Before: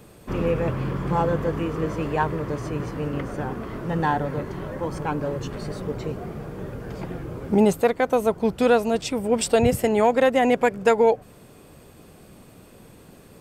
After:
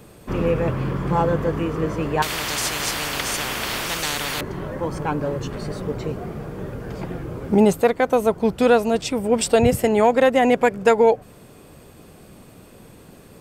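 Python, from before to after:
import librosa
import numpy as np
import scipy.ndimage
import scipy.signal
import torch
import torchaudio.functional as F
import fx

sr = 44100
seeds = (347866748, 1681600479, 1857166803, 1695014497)

y = fx.spectral_comp(x, sr, ratio=10.0, at=(2.22, 4.41))
y = y * librosa.db_to_amplitude(2.5)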